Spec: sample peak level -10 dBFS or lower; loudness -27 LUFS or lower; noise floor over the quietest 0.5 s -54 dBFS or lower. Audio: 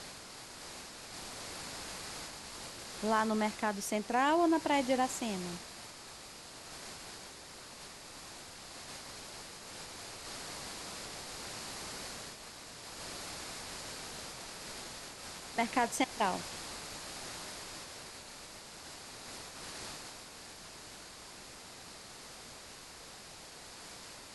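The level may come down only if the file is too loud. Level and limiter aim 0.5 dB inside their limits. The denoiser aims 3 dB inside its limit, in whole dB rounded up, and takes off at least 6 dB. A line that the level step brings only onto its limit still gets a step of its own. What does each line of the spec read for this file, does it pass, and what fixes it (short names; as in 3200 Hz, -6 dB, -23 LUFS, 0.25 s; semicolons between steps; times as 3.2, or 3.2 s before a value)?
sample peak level -16.5 dBFS: OK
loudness -39.0 LUFS: OK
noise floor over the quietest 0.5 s -51 dBFS: fail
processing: denoiser 6 dB, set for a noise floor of -51 dBFS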